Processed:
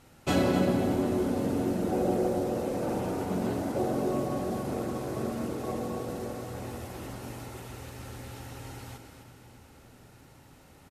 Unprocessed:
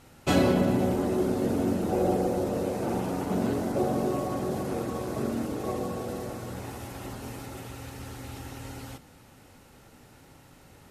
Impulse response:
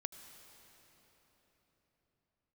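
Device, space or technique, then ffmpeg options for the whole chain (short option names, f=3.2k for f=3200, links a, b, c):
cave: -filter_complex "[0:a]aecho=1:1:257:0.316[a];[1:a]atrim=start_sample=2205[b];[a][b]afir=irnorm=-1:irlink=0"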